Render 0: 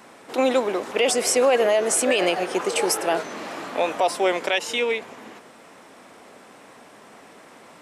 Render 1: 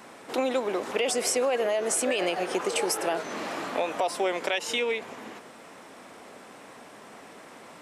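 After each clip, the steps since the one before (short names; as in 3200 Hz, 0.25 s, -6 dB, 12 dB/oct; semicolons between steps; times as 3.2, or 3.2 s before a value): compressor 3:1, threshold -25 dBFS, peak gain reduction 8 dB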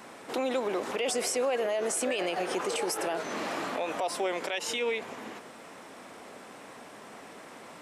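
limiter -21.5 dBFS, peak gain reduction 8 dB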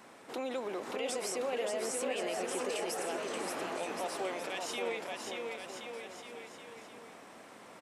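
bouncing-ball echo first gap 0.58 s, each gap 0.85×, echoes 5; gain -7.5 dB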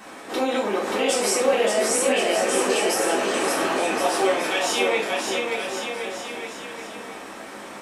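non-linear reverb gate 0.13 s falling, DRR -5 dB; gain +9 dB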